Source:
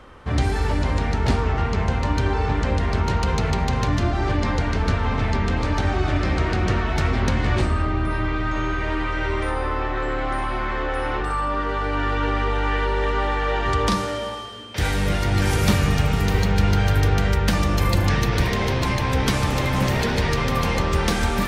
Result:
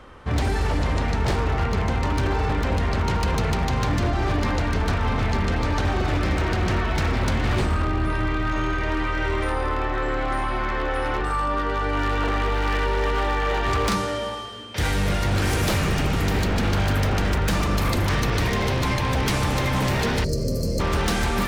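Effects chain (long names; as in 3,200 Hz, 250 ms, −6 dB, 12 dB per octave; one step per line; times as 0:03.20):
wave folding −16 dBFS
gain on a spectral selection 0:20.24–0:20.80, 680–4,100 Hz −26 dB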